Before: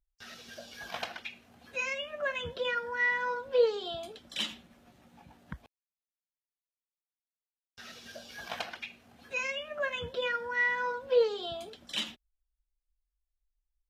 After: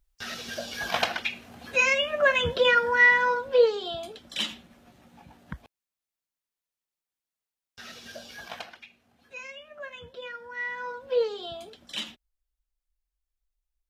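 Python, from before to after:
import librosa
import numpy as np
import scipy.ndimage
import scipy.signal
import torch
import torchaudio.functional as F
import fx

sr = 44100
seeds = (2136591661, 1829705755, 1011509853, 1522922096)

y = fx.gain(x, sr, db=fx.line((2.95, 11.5), (3.75, 4.0), (8.26, 4.0), (8.87, -7.5), (10.35, -7.5), (11.18, 0.0)))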